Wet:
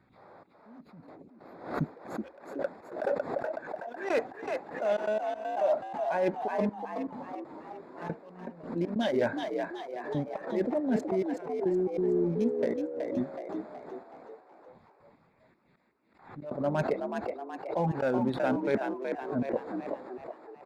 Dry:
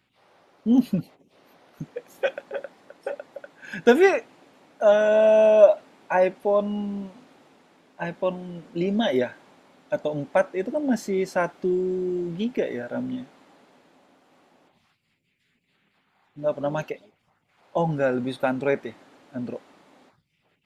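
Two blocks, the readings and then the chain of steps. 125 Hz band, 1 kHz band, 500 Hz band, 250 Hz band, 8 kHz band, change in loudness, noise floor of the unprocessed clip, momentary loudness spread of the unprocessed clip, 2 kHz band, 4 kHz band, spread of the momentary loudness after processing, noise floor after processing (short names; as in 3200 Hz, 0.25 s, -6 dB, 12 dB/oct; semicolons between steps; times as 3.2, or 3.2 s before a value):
-4.0 dB, -5.0 dB, -8.5 dB, -5.5 dB, n/a, -8.5 dB, -70 dBFS, 19 LU, -9.0 dB, -9.0 dB, 15 LU, -64 dBFS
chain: Wiener smoothing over 15 samples; reverse; compressor 16:1, threshold -32 dBFS, peak gain reduction 24 dB; reverse; step gate "xxxx.x....xx.x" 139 bpm -24 dB; frequency-shifting echo 0.373 s, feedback 49%, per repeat +64 Hz, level -5.5 dB; backwards sustainer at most 100 dB/s; gain +7 dB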